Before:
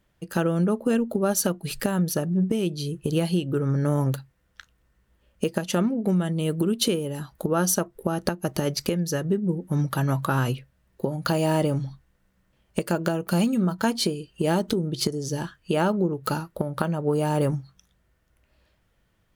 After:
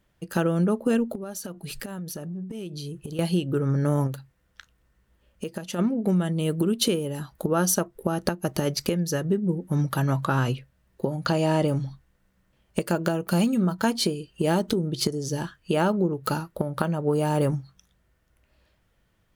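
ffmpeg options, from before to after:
-filter_complex "[0:a]asettb=1/sr,asplit=3[a][b][c];[a]atrim=end=1.154[d];[b]atrim=start=1.15:end=3.19,asetpts=PTS-STARTPTS,afade=t=in:d=0.004:c=qsin,afade=t=out:st=2.036:d=0.004:c=qsin,acompressor=threshold=-31dB:ratio=12:attack=3.2:release=140:knee=1:detection=peak[e];[c]atrim=start=3.186[f];[d][e]acrossfade=d=0.004:c1=hsin:c2=qsin[g];[g][f]acrossfade=d=0.004:c1=qsin:c2=hsin,asplit=3[h][i][j];[h]afade=t=out:st=4.06:d=0.02[k];[i]acompressor=threshold=-40dB:ratio=1.5:attack=3.2:release=140:knee=1:detection=peak,afade=t=in:st=4.06:d=0.02,afade=t=out:st=5.78:d=0.02[l];[j]afade=t=in:st=5.78:d=0.02[m];[k][l][m]amix=inputs=3:normalize=0,asettb=1/sr,asplit=3[n][o][p];[n]atrim=end=10.024[q];[o]atrim=start=10.02:end=11.68,asetpts=PTS-STARTPTS,afade=t=in:d=0.004:c=qsin,afade=t=out:st=1.656:d=0.004:c=qsin,acrossover=split=8700[r][s];[s]acompressor=threshold=-57dB:ratio=4:attack=1:release=60[t];[r][t]amix=inputs=2:normalize=0[u];[p]atrim=start=11.676[v];[q][u]acrossfade=d=0.004:c1=hsin:c2=qsin[w];[w][v]acrossfade=d=0.004:c1=qsin:c2=hsin"

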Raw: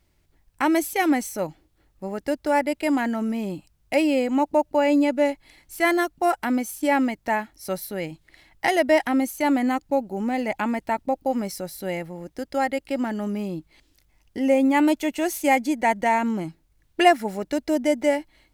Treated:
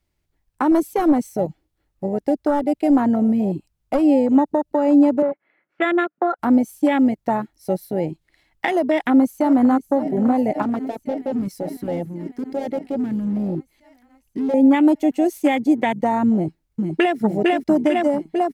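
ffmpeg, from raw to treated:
-filter_complex "[0:a]asettb=1/sr,asplit=3[a][b][c];[a]atrim=end=0.714[d];[b]atrim=start=0.71:end=4.03,asetpts=PTS-STARTPTS,afade=t=in:d=0.004:c=qsin,afade=t=out:st=3.316:d=0.004:c=qsin,aeval=exprs='clip(val(0),-1,0.1)':c=same[e];[c]atrim=start=4.026[f];[d][e]acrossfade=d=0.004:c1=hsin:c2=qsin[g];[g][f]acrossfade=d=0.004:c1=qsin:c2=hsin,asettb=1/sr,asplit=3[h][i][j];[h]atrim=end=5.224[k];[i]atrim=start=5.22:end=6.39,asetpts=PTS-STARTPTS,afade=t=in:d=0.004:c=qsin,afade=t=out:st=1.166:d=0.004:c=qsin,highpass=f=210:w=0.5412,highpass=f=210:w=1.3066,equalizer=f=270:t=q:w=4:g=-8,equalizer=f=560:t=q:w=4:g=3,equalizer=f=870:t=q:w=4:g=-6,equalizer=f=1.4k:t=q:w=4:g=8,lowpass=f=2.1k:w=0.5412,lowpass=f=2.1k:w=1.3066[l];[j]atrim=start=6.386[m];[k][l]acrossfade=d=0.004:c1=hsin:c2=qsin[n];[n][m]acrossfade=d=0.004:c1=qsin:c2=hsin,asplit=2[o][p];[p]afade=t=in:st=8.84:d=0.01,afade=t=out:st=9.79:d=0.01,aecho=0:1:550|1100|1650|2200|2750|3300|3850|4400|4950|5500|6050|6600:0.211349|0.169079|0.135263|0.108211|0.0865685|0.0692548|0.0554038|0.0443231|0.0354585|0.0283668|0.0226934|0.0181547[q];[o][q]amix=inputs=2:normalize=0,asettb=1/sr,asplit=3[r][s][t];[r]atrim=end=10.624[u];[s]atrim=start=10.62:end=14.54,asetpts=PTS-STARTPTS,afade=t=in:d=0.004:c=qsin,afade=t=out:st=3.916:d=0.004:c=qsin,volume=27.5dB,asoftclip=hard,volume=-27.5dB[v];[t]atrim=start=14.536[w];[u][v]acrossfade=d=0.004:c1=hsin:c2=qsin[x];[x][w]acrossfade=d=0.004:c1=qsin:c2=hsin,asplit=2[y][z];[z]afade=t=in:st=16.33:d=0.01,afade=t=out:st=17.18:d=0.01,aecho=0:1:450|900|1350|1800|2250|2700|3150|3600|4050|4500|4950|5400:0.794328|0.55603|0.389221|0.272455|0.190718|0.133503|0.0934519|0.0654163|0.0457914|0.032054|0.0224378|0.0157065[aa];[y][aa]amix=inputs=2:normalize=0,afwtdn=0.0631,alimiter=limit=-14dB:level=0:latency=1:release=127,acrossover=split=360|3000[ab][ac][ad];[ac]acompressor=threshold=-28dB:ratio=6[ae];[ab][ae][ad]amix=inputs=3:normalize=0,volume=8.5dB"

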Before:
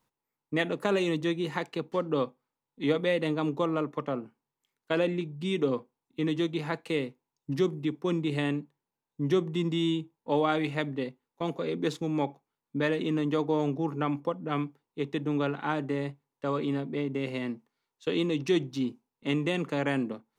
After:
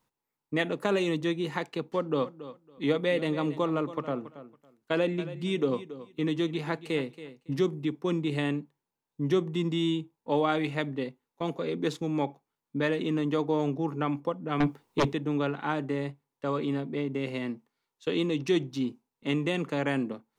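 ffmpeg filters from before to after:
-filter_complex "[0:a]asettb=1/sr,asplit=3[a][b][c];[a]atrim=end=1.864[d];[b]atrim=start=1.86:end=7.63,asetpts=PTS-STARTPTS,afade=t=in:d=0.004:c=qsin,afade=t=out:st=5.766:d=0.004:c=qsin,aecho=1:1:278|556:0.188|0.0358,atrim=end_sample=254457[e];[c]atrim=start=7.626[f];[d][e]acrossfade=d=0.004:c1=hsin:c2=qsin[g];[g][f]acrossfade=d=0.004:c1=qsin:c2=hsin,asettb=1/sr,asplit=3[h][i][j];[h]atrim=end=14.604[k];[i]atrim=start=14.6:end=15.13,asetpts=PTS-STARTPTS,afade=t=in:d=0.004:c=qsin,afade=t=out:st=0.526:d=0.004:c=qsin,aeval=exprs='0.112*sin(PI/2*3.16*val(0)/0.112)':c=same[l];[j]atrim=start=15.126[m];[k][l]acrossfade=d=0.004:c1=hsin:c2=qsin[n];[n][m]acrossfade=d=0.004:c1=qsin:c2=hsin"

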